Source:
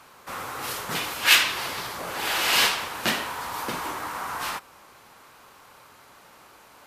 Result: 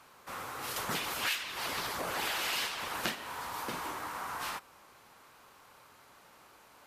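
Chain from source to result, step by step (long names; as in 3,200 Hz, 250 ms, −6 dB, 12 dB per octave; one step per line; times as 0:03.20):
0:00.76–0:03.15: harmonic and percussive parts rebalanced percussive +9 dB
downward compressor 10 to 1, threshold −24 dBFS, peak gain reduction 19.5 dB
level −7 dB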